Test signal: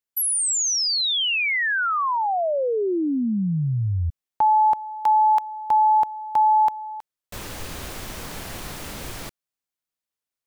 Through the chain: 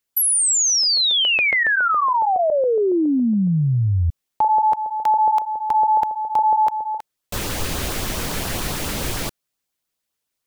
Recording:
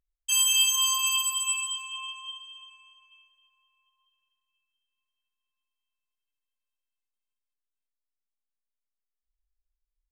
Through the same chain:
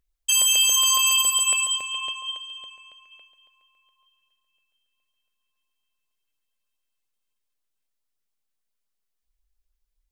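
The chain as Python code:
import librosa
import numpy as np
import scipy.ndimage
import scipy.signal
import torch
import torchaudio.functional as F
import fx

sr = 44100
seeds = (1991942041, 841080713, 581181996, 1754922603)

p1 = fx.filter_lfo_notch(x, sr, shape='saw_up', hz=7.2, low_hz=560.0, high_hz=2500.0, q=2.7)
p2 = fx.over_compress(p1, sr, threshold_db=-27.0, ratio=-1.0)
y = p1 + (p2 * librosa.db_to_amplitude(1.5))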